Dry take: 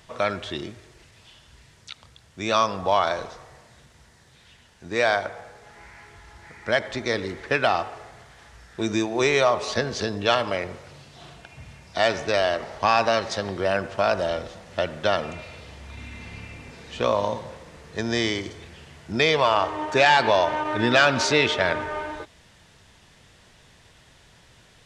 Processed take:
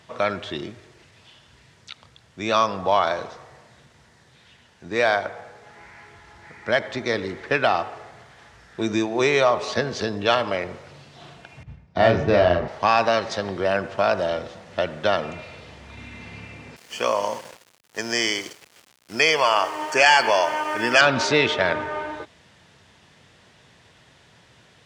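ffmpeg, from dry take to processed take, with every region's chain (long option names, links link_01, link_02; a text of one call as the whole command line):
ffmpeg -i in.wav -filter_complex "[0:a]asettb=1/sr,asplit=3[link_01][link_02][link_03];[link_01]atrim=end=11.634[link_04];[link_02]atrim=start=11.63:end=12.68,asetpts=PTS-STARTPTS,afade=type=in:duration=0.004:curve=qsin,afade=type=out:start_time=1.046:duration=0.004:curve=qsin,agate=range=-33dB:threshold=-38dB:ratio=3:release=100:detection=peak,aemphasis=mode=reproduction:type=riaa,asplit=2[link_05][link_06];[link_06]adelay=34,volume=-3dB[link_07];[link_05][link_07]amix=inputs=2:normalize=0,atrim=end_sample=46305[link_08];[link_03]atrim=start=12.676[link_09];[link_04][link_08]acrossfade=duration=0.004:curve1=hsin:curve2=qsin[link_10];[link_10][link_09]acrossfade=duration=0.004:curve1=qsin:curve2=hsin,asettb=1/sr,asplit=3[link_11][link_12][link_13];[link_11]atrim=end=16.764[link_14];[link_12]atrim=start=16.76:end=21.01,asetpts=PTS-STARTPTS,afade=type=in:duration=0.004:curve=qsin,afade=type=out:start_time=4.246:duration=0.004:curve=qsin,asuperstop=centerf=3800:order=12:qfactor=4.2,aemphasis=mode=production:type=riaa,aeval=exprs='val(0)*gte(abs(val(0)),0.0133)':channel_layout=same[link_15];[link_13]atrim=start=21.006[link_16];[link_14][link_15]acrossfade=duration=0.004:curve1=hsin:curve2=qsin[link_17];[link_17][link_16]acrossfade=duration=0.004:curve1=qsin:curve2=hsin,highpass=96,highshelf=frequency=7800:gain=-10,volume=1.5dB" out.wav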